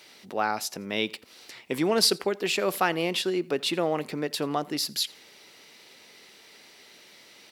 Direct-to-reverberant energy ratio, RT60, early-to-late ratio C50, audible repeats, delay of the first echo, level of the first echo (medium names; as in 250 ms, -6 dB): no reverb, no reverb, no reverb, 1, 85 ms, -24.0 dB